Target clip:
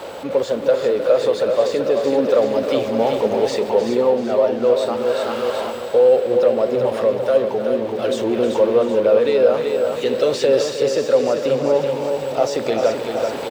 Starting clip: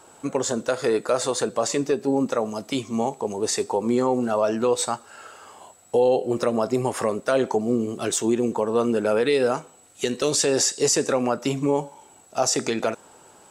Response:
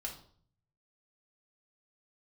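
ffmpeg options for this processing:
-filter_complex "[0:a]aeval=exprs='val(0)+0.5*0.0501*sgn(val(0))':c=same,equalizer=f=540:t=o:w=0.49:g=14.5,asplit=2[a][b];[b]aecho=0:1:382|764|1146|1528|1910|2292|2674:0.501|0.271|0.146|0.0789|0.0426|0.023|0.0124[c];[a][c]amix=inputs=2:normalize=0,dynaudnorm=f=280:g=3:m=11.5dB,highpass=41,highshelf=f=5.3k:t=q:w=1.5:g=-11,asplit=2[d][e];[e]aecho=0:1:310:0.299[f];[d][f]amix=inputs=2:normalize=0,volume=-4.5dB"

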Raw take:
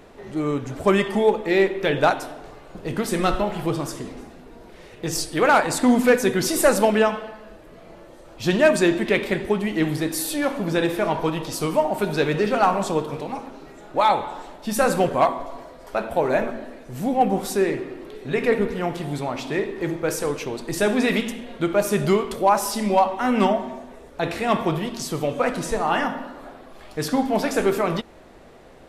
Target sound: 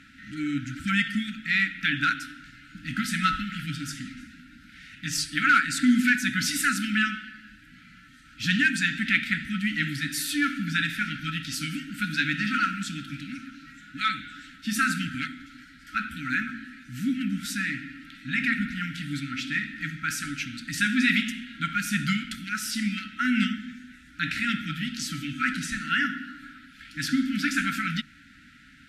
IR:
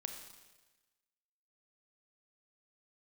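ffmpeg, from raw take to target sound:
-filter_complex "[0:a]lowshelf=f=470:g=-11.5,asplit=2[a][b];[b]alimiter=limit=-13.5dB:level=0:latency=1:release=478,volume=2dB[c];[a][c]amix=inputs=2:normalize=0,highpass=42,bandreject=f=50:t=h:w=6,bandreject=f=100:t=h:w=6,bandreject=f=150:t=h:w=6,afftfilt=real='re*(1-between(b*sr/4096,310,1300))':imag='im*(1-between(b*sr/4096,310,1300))':win_size=4096:overlap=0.75,lowpass=f=2.4k:p=1"

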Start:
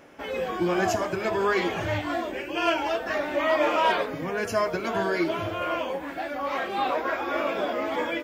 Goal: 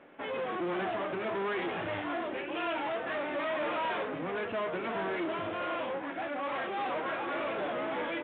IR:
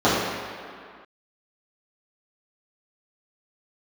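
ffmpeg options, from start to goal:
-af "asoftclip=type=tanh:threshold=-29dB,aeval=exprs='0.0355*(cos(1*acos(clip(val(0)/0.0355,-1,1)))-cos(1*PI/2))+0.0126*(cos(2*acos(clip(val(0)/0.0355,-1,1)))-cos(2*PI/2))+0.00126*(cos(5*acos(clip(val(0)/0.0355,-1,1)))-cos(5*PI/2))+0.00251*(cos(7*acos(clip(val(0)/0.0355,-1,1)))-cos(7*PI/2))':c=same,highpass=160,lowpass=3.1k,volume=-1.5dB" -ar 8000 -c:a pcm_mulaw

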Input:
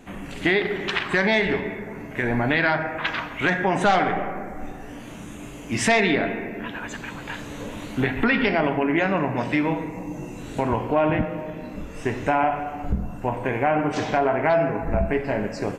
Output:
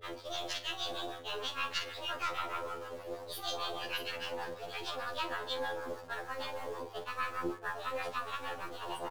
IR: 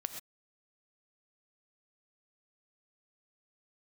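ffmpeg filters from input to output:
-filter_complex "[0:a]afftdn=nr=22:nf=-38,highpass=300,equalizer=f=4.4k:t=o:w=0.65:g=-3.5,areverse,acompressor=threshold=-34dB:ratio=12,areverse,acrossover=split=430[a][b];[a]aeval=exprs='val(0)*(1-1/2+1/2*cos(2*PI*3.7*n/s))':c=same[c];[b]aeval=exprs='val(0)*(1-1/2-1/2*cos(2*PI*3.7*n/s))':c=same[d];[c][d]amix=inputs=2:normalize=0,aeval=exprs='val(0)+0.00141*(sin(2*PI*60*n/s)+sin(2*PI*2*60*n/s)/2+sin(2*PI*3*60*n/s)/3+sin(2*PI*4*60*n/s)/4+sin(2*PI*5*60*n/s)/5)':c=same,asplit=2[e][f];[f]acrusher=bits=5:dc=4:mix=0:aa=0.000001,volume=-5.5dB[g];[e][g]amix=inputs=2:normalize=0,aecho=1:1:79:0.224,asetrate=76440,aresample=44100,afftfilt=real='re*2*eq(mod(b,4),0)':imag='im*2*eq(mod(b,4),0)':win_size=2048:overlap=0.75,volume=4dB"

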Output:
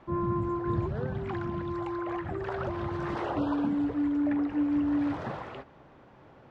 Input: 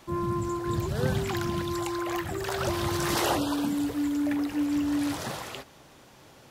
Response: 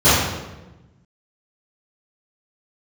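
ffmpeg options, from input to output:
-filter_complex "[0:a]lowpass=1.6k,asettb=1/sr,asplit=3[a][b][c];[a]atrim=end=0.854[d];[b]atrim=start=0.85:end=3.37,asetpts=PTS-STARTPTS,afade=t=in:d=0.004:c=qsin,afade=t=out:st=2.516:d=0.004:c=qsin,acompressor=threshold=-29dB:ratio=6[e];[c]atrim=start=3.366[f];[d][e]acrossfade=d=0.004:c1=hsin:c2=qsin[g];[g][f]acrossfade=d=0.004:c1=qsin:c2=hsin"

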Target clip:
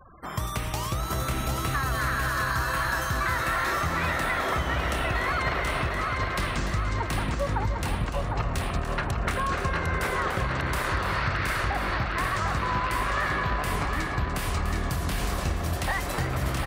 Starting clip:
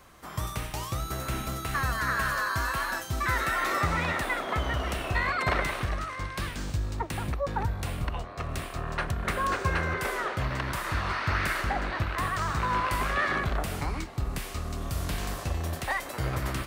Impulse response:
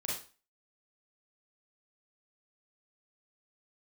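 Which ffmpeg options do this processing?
-filter_complex "[0:a]afftfilt=real='re*gte(hypot(re,im),0.00447)':imag='im*gte(hypot(re,im),0.00447)':win_size=1024:overlap=0.75,asoftclip=type=tanh:threshold=-16.5dB,asplit=2[a][b];[b]aecho=0:1:293:0.335[c];[a][c]amix=inputs=2:normalize=0,acompressor=threshold=-31dB:ratio=6,asplit=2[d][e];[e]aecho=0:1:753|1506|2259|3012|3765|4518|5271:0.562|0.292|0.152|0.0791|0.0411|0.0214|0.0111[f];[d][f]amix=inputs=2:normalize=0,volume=6dB"

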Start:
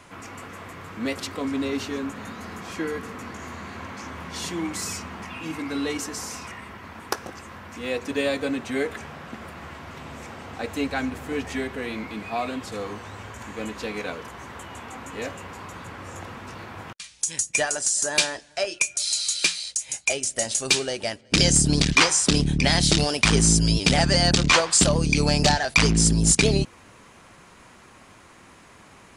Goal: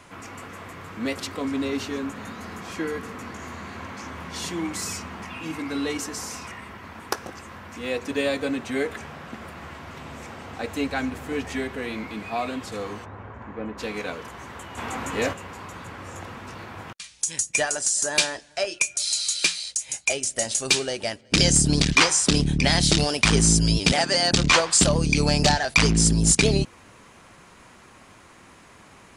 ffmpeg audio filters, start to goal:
-filter_complex "[0:a]asplit=3[a][b][c];[a]afade=t=out:st=13.04:d=0.02[d];[b]lowpass=1.4k,afade=t=in:st=13.04:d=0.02,afade=t=out:st=13.77:d=0.02[e];[c]afade=t=in:st=13.77:d=0.02[f];[d][e][f]amix=inputs=3:normalize=0,asplit=3[g][h][i];[g]afade=t=out:st=14.77:d=0.02[j];[h]acontrast=85,afade=t=in:st=14.77:d=0.02,afade=t=out:st=15.32:d=0.02[k];[i]afade=t=in:st=15.32:d=0.02[l];[j][k][l]amix=inputs=3:normalize=0,asettb=1/sr,asplit=3[m][n][o];[m]atrim=end=23.924[p];[n]atrim=start=23.92:end=24.33,asetpts=PTS-STARTPTS,afade=t=in:d=0.004:c=qsin,afade=t=out:st=0.406:d=0.004:c=qsin,highpass=330[q];[o]atrim=start=24.326[r];[p][q]acrossfade=d=0.004:c1=hsin:c2=qsin[s];[s][r]acrossfade=d=0.004:c1=qsin:c2=hsin"

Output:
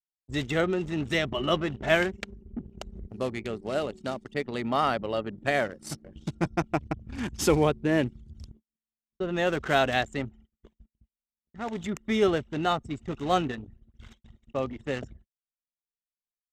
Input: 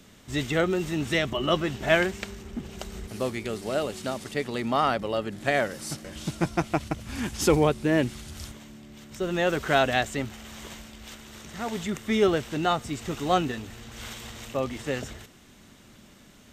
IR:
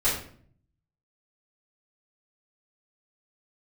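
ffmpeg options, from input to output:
-af "anlmdn=6.31,agate=range=-46dB:threshold=-49dB:ratio=16:detection=peak,volume=-1.5dB"

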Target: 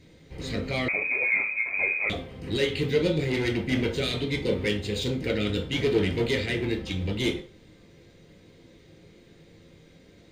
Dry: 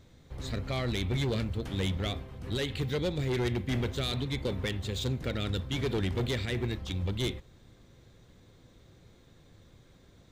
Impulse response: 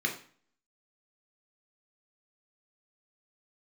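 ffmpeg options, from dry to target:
-filter_complex "[1:a]atrim=start_sample=2205,asetrate=57330,aresample=44100[a];[0:a][a]afir=irnorm=-1:irlink=0,asettb=1/sr,asplit=3[b][c][d];[b]atrim=end=0.884[e];[c]atrim=start=0.88:end=2.1,asetpts=PTS-STARTPTS,afade=t=in:d=0.004:c=qsin,afade=t=out:st=1.216:d=0.004:c=qsin,lowpass=f=2.2k:t=q:w=0.5098,lowpass=f=2.2k:t=q:w=0.6013,lowpass=f=2.2k:t=q:w=0.9,lowpass=f=2.2k:t=q:w=2.563,afreqshift=-2600[f];[d]atrim=start=2.096[g];[e][f]acrossfade=d=0.004:c1=hsin:c2=qsin[h];[h][g]acrossfade=d=0.004:c1=qsin:c2=hsin,volume=1dB"

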